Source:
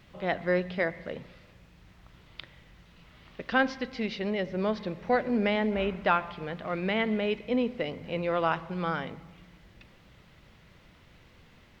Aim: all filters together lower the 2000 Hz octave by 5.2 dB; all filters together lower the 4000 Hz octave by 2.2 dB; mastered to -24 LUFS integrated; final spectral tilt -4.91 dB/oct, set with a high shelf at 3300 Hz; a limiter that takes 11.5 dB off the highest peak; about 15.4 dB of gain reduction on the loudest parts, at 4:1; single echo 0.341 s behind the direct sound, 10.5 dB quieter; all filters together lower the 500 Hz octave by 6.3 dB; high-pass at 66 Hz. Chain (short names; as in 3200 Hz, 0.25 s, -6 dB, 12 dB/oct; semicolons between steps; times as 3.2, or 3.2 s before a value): HPF 66 Hz; bell 500 Hz -7.5 dB; bell 2000 Hz -7.5 dB; high shelf 3300 Hz +7 dB; bell 4000 Hz -4 dB; compressor 4:1, threshold -44 dBFS; limiter -37.5 dBFS; echo 0.341 s -10.5 dB; gain +25.5 dB